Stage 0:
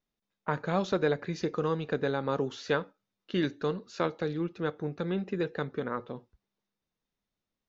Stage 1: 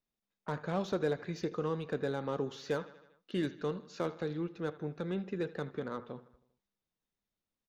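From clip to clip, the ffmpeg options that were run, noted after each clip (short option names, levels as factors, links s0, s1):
-filter_complex "[0:a]aecho=1:1:79|158|237|316|395:0.106|0.0636|0.0381|0.0229|0.0137,acrossover=split=840[s0][s1];[s1]asoftclip=type=tanh:threshold=0.02[s2];[s0][s2]amix=inputs=2:normalize=0,volume=0.596"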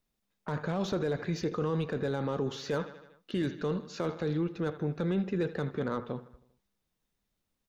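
-af "lowshelf=f=140:g=6.5,alimiter=level_in=1.78:limit=0.0631:level=0:latency=1:release=12,volume=0.562,volume=2.11"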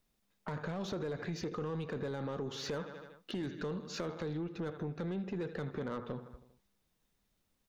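-af "acompressor=threshold=0.0141:ratio=6,asoftclip=type=tanh:threshold=0.0211,volume=1.5"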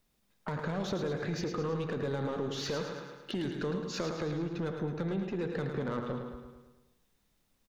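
-af "aecho=1:1:108|216|324|432|540|648|756:0.447|0.241|0.13|0.0703|0.038|0.0205|0.0111,volume=1.5"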